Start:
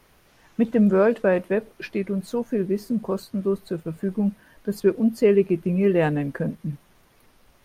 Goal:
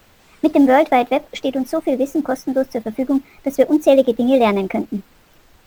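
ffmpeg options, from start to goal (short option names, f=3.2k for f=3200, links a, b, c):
-filter_complex "[0:a]asetrate=59535,aresample=44100,asplit=2[a][b];[b]acrusher=bits=5:mode=log:mix=0:aa=0.000001,volume=-10dB[c];[a][c]amix=inputs=2:normalize=0,volume=3.5dB"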